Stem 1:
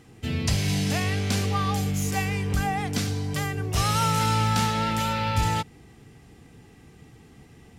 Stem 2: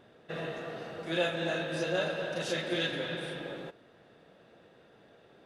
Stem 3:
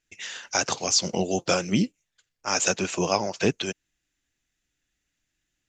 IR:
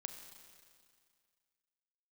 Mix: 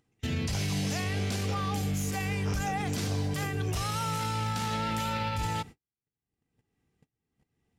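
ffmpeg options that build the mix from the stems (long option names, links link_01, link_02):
-filter_complex "[0:a]alimiter=limit=-23dB:level=0:latency=1:release=37,volume=-0.5dB,asplit=2[link_01][link_02];[link_02]volume=-20.5dB[link_03];[1:a]acompressor=threshold=-45dB:ratio=2,acrusher=bits=6:mix=0:aa=0.5,adelay=400,volume=-14dB[link_04];[2:a]acompressor=threshold=-28dB:ratio=6,volume=-12.5dB[link_05];[3:a]atrim=start_sample=2205[link_06];[link_03][link_06]afir=irnorm=-1:irlink=0[link_07];[link_01][link_04][link_05][link_07]amix=inputs=4:normalize=0,agate=range=-51dB:threshold=-42dB:ratio=16:detection=peak,acompressor=mode=upward:threshold=-54dB:ratio=2.5"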